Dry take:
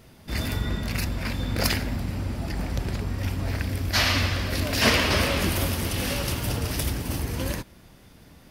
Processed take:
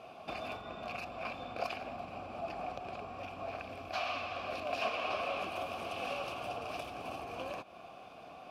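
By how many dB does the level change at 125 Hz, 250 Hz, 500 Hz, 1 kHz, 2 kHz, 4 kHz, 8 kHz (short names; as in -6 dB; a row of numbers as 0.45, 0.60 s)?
-27.5, -19.5, -7.0, -4.5, -13.5, -17.5, -26.0 dB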